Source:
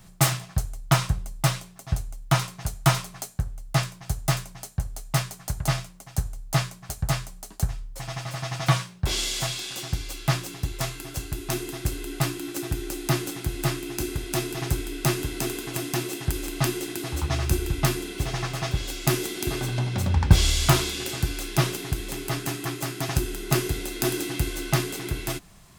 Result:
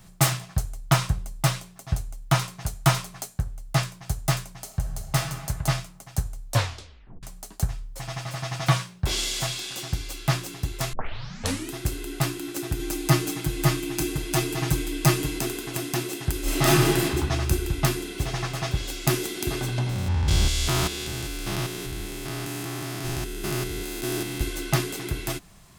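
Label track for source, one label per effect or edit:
4.600000	5.460000	reverb throw, RT60 1.5 s, DRR 5 dB
6.450000	6.450000	tape stop 0.78 s
10.930000	10.930000	tape start 0.79 s
12.790000	15.390000	comb 6.4 ms, depth 96%
16.420000	17.020000	reverb throw, RT60 1.6 s, DRR -9 dB
19.890000	24.410000	stepped spectrum every 0.2 s

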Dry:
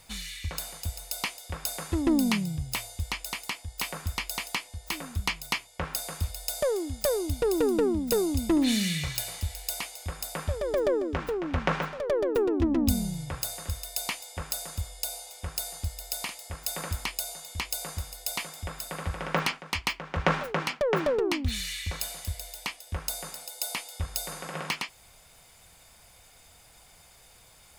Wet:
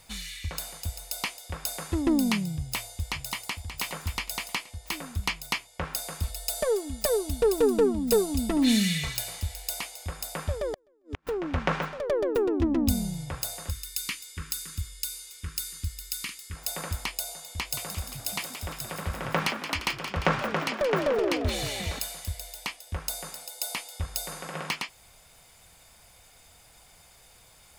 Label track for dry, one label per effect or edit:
2.560000	3.610000	echo throw 0.58 s, feedback 30%, level -9.5 dB
6.230000	9.140000	comb 4.5 ms
10.660000	11.270000	flipped gate shuts at -22 dBFS, range -40 dB
13.710000	16.560000	Butterworth band-stop 680 Hz, Q 0.72
17.490000	21.990000	frequency-shifting echo 0.174 s, feedback 64%, per repeat +57 Hz, level -9 dB

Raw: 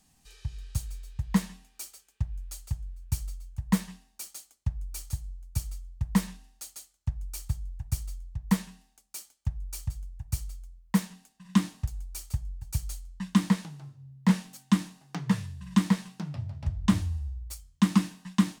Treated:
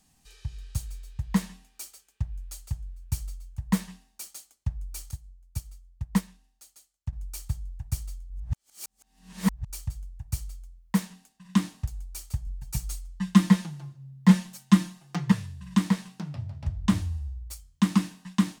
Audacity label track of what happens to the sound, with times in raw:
5.110000	7.130000	upward expander, over -39 dBFS
8.300000	9.700000	reverse
12.460000	15.320000	comb 5.7 ms, depth 99%

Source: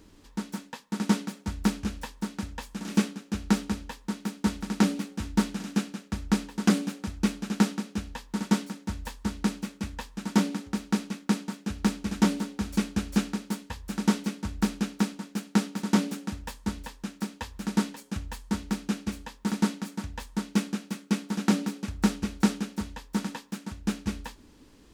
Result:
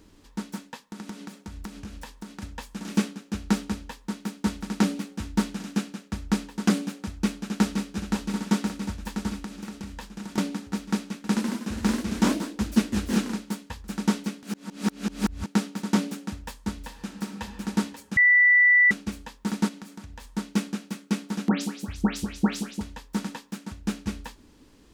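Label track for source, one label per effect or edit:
0.880000	2.420000	compressor 8:1, threshold -34 dBFS
7.080000	7.910000	echo throw 0.52 s, feedback 75%, level -4.5 dB
9.390000	10.380000	compressor, threshold -32 dBFS
11.160000	13.490000	echoes that change speed 82 ms, each echo +1 st, echoes 3
14.430000	15.460000	reverse
16.760000	17.440000	reverb throw, RT60 2.2 s, DRR 5.5 dB
18.170000	18.910000	bleep 1970 Hz -14 dBFS
19.680000	20.240000	compressor 3:1, threshold -39 dBFS
21.480000	22.810000	dispersion highs, late by 0.14 s, half as late at 2700 Hz

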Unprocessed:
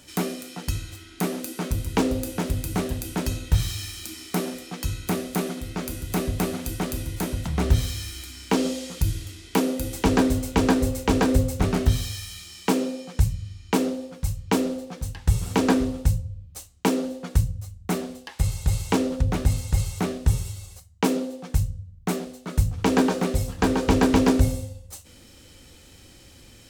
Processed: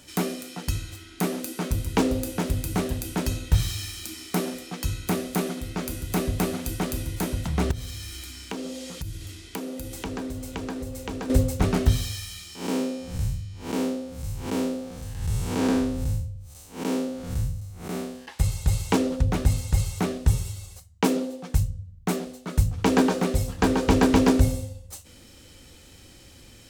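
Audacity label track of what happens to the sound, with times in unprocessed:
7.710000	11.300000	compressor 3:1, threshold -33 dBFS
12.550000	18.280000	time blur width 0.17 s

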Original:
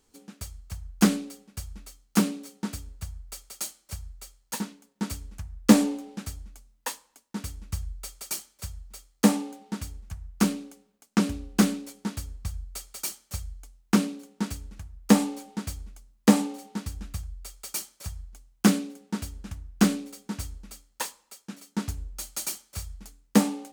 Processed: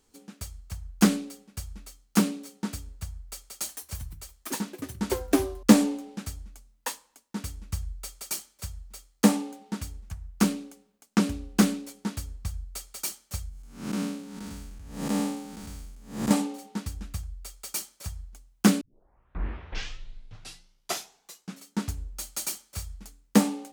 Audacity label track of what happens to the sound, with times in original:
3.400000	6.090000	echoes that change speed 0.215 s, each echo +5 st, echoes 2, each echo -6 dB
13.490000	16.310000	time blur width 0.235 s
18.810000	18.810000	tape start 2.86 s

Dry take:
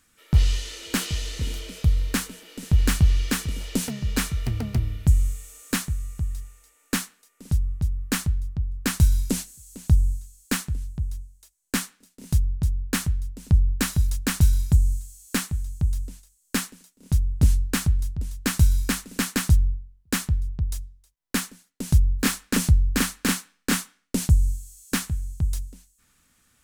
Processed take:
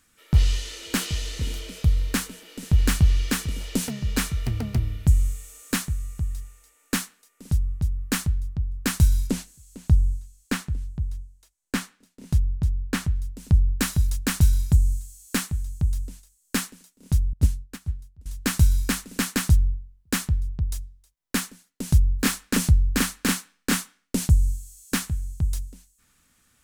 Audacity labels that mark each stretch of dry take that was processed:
9.270000	13.160000	high shelf 5300 Hz -9.5 dB
17.330000	18.260000	upward expander 2.5:1, over -28 dBFS

